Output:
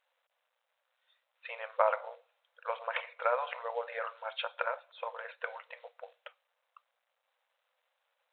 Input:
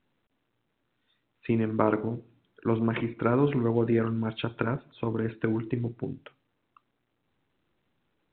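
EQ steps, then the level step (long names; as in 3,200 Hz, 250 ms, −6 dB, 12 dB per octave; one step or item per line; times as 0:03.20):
linear-phase brick-wall high-pass 480 Hz
0.0 dB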